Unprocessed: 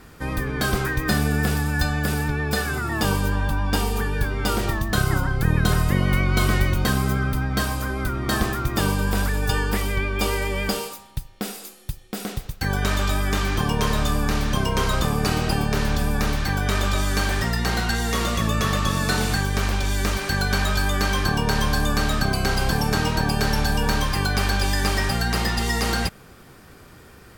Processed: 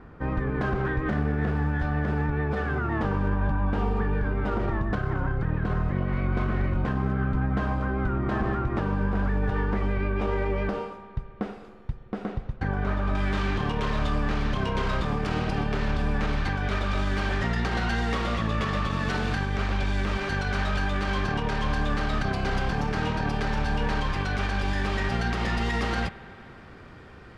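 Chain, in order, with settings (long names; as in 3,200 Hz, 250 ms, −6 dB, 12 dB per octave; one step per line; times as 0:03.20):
phase distortion by the signal itself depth 0.27 ms
low-pass filter 1,400 Hz 12 dB per octave, from 0:13.15 3,200 Hz
brickwall limiter −17.5 dBFS, peak gain reduction 9 dB
convolution reverb RT60 3.5 s, pre-delay 56 ms, DRR 15.5 dB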